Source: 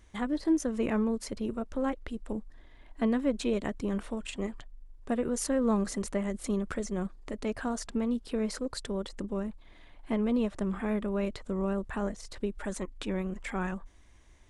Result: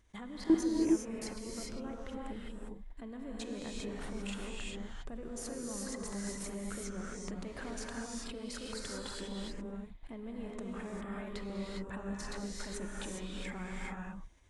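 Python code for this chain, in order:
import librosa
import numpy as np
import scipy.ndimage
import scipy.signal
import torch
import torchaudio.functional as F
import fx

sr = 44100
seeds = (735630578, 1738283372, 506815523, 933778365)

y = fx.level_steps(x, sr, step_db=23)
y = fx.rev_gated(y, sr, seeds[0], gate_ms=430, shape='rising', drr_db=-3.0)
y = F.gain(torch.from_numpy(y), 1.5).numpy()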